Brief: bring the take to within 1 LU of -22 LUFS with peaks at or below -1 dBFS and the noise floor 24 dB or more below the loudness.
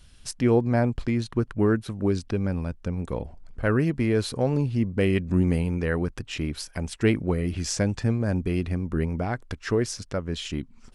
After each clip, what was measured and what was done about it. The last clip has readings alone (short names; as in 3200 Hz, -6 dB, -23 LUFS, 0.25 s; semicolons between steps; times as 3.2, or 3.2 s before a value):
loudness -26.5 LUFS; peak -9.0 dBFS; loudness target -22.0 LUFS
-> gain +4.5 dB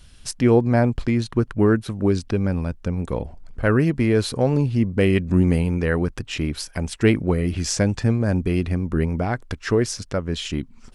loudness -22.0 LUFS; peak -4.5 dBFS; noise floor -47 dBFS